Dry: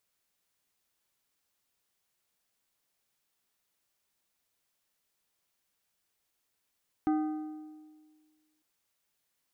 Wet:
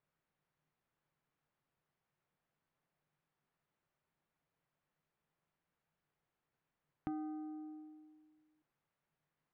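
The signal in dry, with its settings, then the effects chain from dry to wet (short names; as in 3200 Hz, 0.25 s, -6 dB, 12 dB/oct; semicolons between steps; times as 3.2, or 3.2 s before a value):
metal hit plate, lowest mode 308 Hz, decay 1.69 s, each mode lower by 8.5 dB, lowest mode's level -23.5 dB
LPF 1700 Hz 12 dB/oct; bell 150 Hz +13.5 dB 0.34 oct; compressor 2.5:1, threshold -45 dBFS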